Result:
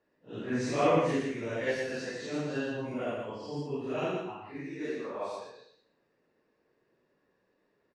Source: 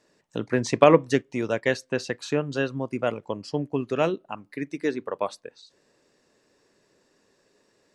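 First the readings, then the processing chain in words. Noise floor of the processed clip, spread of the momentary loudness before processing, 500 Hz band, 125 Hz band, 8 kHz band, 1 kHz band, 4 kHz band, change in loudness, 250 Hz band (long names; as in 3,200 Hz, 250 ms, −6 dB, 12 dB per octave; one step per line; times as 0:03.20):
−75 dBFS, 16 LU, −8.0 dB, −7.0 dB, −7.5 dB, −7.0 dB, −7.0 dB, −7.5 dB, −6.5 dB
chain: random phases in long frames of 200 ms
repeating echo 117 ms, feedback 27%, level −4 dB
low-pass that shuts in the quiet parts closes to 2,400 Hz, open at −22.5 dBFS
level −8.5 dB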